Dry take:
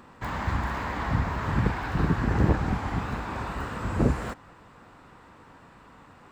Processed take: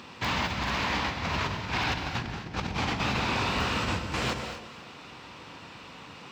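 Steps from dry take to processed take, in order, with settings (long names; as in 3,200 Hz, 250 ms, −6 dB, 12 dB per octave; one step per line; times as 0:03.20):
high-pass filter 79 Hz
flat-topped bell 3,800 Hz +12.5 dB
compressor whose output falls as the input rises −31 dBFS, ratio −0.5
delay that swaps between a low-pass and a high-pass 128 ms, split 890 Hz, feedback 51%, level −8.5 dB
reverb whose tail is shaped and stops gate 250 ms rising, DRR 7.5 dB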